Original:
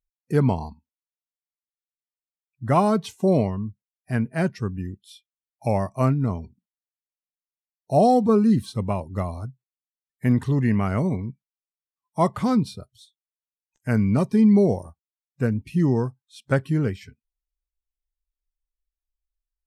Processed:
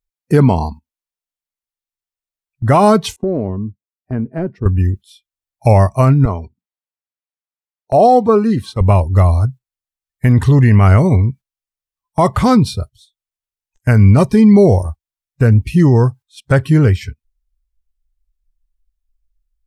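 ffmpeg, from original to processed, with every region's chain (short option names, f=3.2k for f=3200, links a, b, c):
-filter_complex "[0:a]asettb=1/sr,asplit=3[a][b][c];[a]atrim=end=3.164[d];[b]atrim=start=3.16:end=4.66,asetpts=PTS-STARTPTS,afade=t=in:d=0.004:c=qsin,afade=t=out:st=1.496:d=0.004:c=qsin,bandpass=f=300:t=q:w=1.3,acompressor=threshold=-26dB:ratio=3:attack=3.2:release=140:knee=1:detection=peak[e];[c]atrim=start=4.656[f];[d][e]acrossfade=d=0.004:c1=hsin:c2=qsin[g];[g][f]acrossfade=d=0.004:c1=qsin:c2=hsin,asettb=1/sr,asplit=3[h][i][j];[h]atrim=end=6.254[k];[i]atrim=start=6.25:end=8.81,asetpts=PTS-STARTPTS,afade=t=in:d=0.004:c=qsin,afade=t=out:st=2.556:d=0.004:c=qsin,highpass=f=380:p=1,highshelf=f=3.8k:g=-12[l];[j]atrim=start=8.806[m];[k][l]acrossfade=d=0.004:c1=hsin:c2=qsin[n];[n][m]acrossfade=d=0.004:c1=qsin:c2=hsin,agate=range=-11dB:threshold=-43dB:ratio=16:detection=peak,asubboost=boost=8.5:cutoff=65,alimiter=level_in=14.5dB:limit=-1dB:release=50:level=0:latency=1,volume=-1dB"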